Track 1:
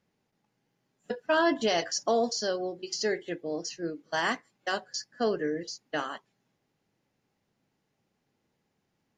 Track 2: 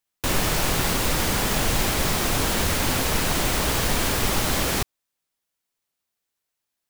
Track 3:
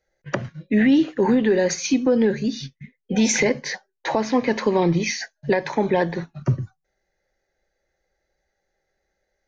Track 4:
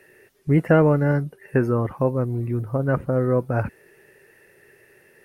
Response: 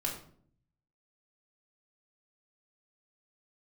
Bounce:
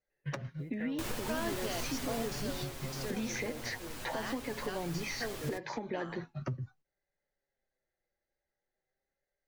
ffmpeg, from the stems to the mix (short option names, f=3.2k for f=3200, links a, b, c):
-filter_complex "[0:a]volume=-13.5dB[a];[1:a]adelay=750,volume=-5.5dB,afade=t=out:st=1.98:d=0.79:silence=0.316228[b];[2:a]lowpass=5.2k,acompressor=threshold=-27dB:ratio=6,aeval=exprs='0.112*(abs(mod(val(0)/0.112+3,4)-2)-1)':c=same,volume=1.5dB[c];[3:a]acompressor=threshold=-21dB:ratio=3,acrusher=bits=9:mode=log:mix=0:aa=0.000001,adelay=100,volume=-17dB[d];[b][c][d]amix=inputs=3:normalize=0,flanger=delay=6.9:depth=1.7:regen=47:speed=0.42:shape=sinusoidal,alimiter=level_in=3dB:limit=-24dB:level=0:latency=1:release=385,volume=-3dB,volume=0dB[e];[a][e]amix=inputs=2:normalize=0,agate=range=-12dB:threshold=-60dB:ratio=16:detection=peak"